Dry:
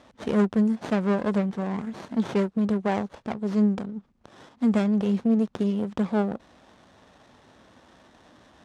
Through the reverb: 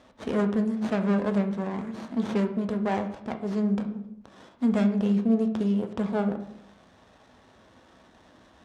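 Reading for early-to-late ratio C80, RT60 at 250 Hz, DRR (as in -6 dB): 13.5 dB, 0.95 s, 5.5 dB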